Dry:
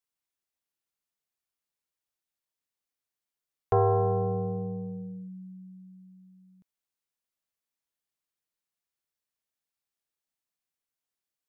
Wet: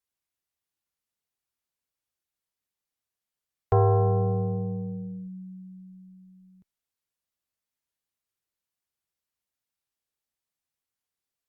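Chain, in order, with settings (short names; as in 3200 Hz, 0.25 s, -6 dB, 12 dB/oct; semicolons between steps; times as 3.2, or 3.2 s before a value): bell 66 Hz +8 dB 2.3 oct; Opus 64 kbps 48000 Hz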